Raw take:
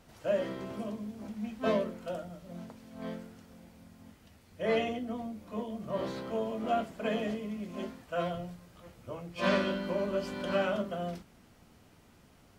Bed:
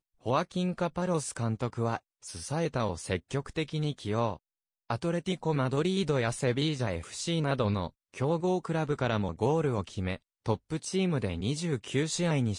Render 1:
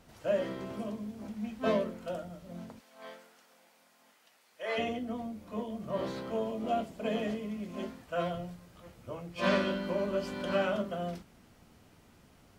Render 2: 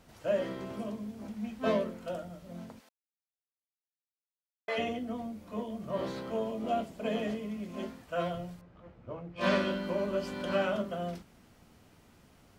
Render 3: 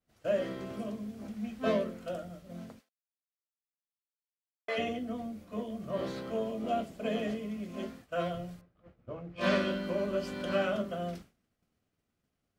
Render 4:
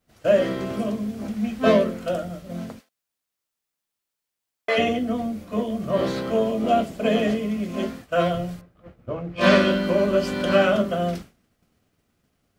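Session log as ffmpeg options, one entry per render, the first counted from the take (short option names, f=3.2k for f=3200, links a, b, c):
-filter_complex "[0:a]asplit=3[a][b][c];[a]afade=t=out:st=2.79:d=0.02[d];[b]highpass=700,afade=t=in:st=2.79:d=0.02,afade=t=out:st=4.77:d=0.02[e];[c]afade=t=in:st=4.77:d=0.02[f];[d][e][f]amix=inputs=3:normalize=0,asettb=1/sr,asplit=3[g][h][i];[g]atrim=end=6.514[j];[h]atrim=start=6.51:end=7.15,asetpts=PTS-STARTPTS,afade=t=in:d=0.004:c=qsin,afade=t=out:st=0.636:d=0.004:c=qsin,equalizer=f=1.5k:w=1.2:g=-6.5[k];[i]atrim=start=7.146[l];[j][k]acrossfade=d=0.004:c1=hsin:c2=qsin[m];[m][l]acrossfade=d=0.004:c1=qsin:c2=hsin"
-filter_complex "[0:a]asettb=1/sr,asplit=3[a][b][c];[a]atrim=end=8.614[d];[b]atrim=start=8.61:end=9.41,asetpts=PTS-STARTPTS,afade=t=in:d=0.004:c=qsin,afade=t=out:st=0.796:d=0.004:c=qsin,adynamicsmooth=sensitivity=3.5:basefreq=2.1k[e];[c]atrim=start=9.406[f];[d][e]acrossfade=d=0.004:c1=hsin:c2=qsin[g];[g][f]acrossfade=d=0.004:c1=qsin:c2=hsin,asplit=3[h][i][j];[h]atrim=end=2.89,asetpts=PTS-STARTPTS,afade=t=out:st=2.886:d=0.004:c=hsin[k];[i]atrim=start=2.89:end=4.68,asetpts=PTS-STARTPTS,volume=0[l];[j]atrim=start=4.68,asetpts=PTS-STARTPTS,afade=t=in:d=0.004:c=hsin[m];[k][l][m]concat=n=3:v=0:a=1"
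-af "equalizer=f=920:t=o:w=0.21:g=-9,agate=range=-33dB:threshold=-46dB:ratio=3:detection=peak"
-af "volume=12dB"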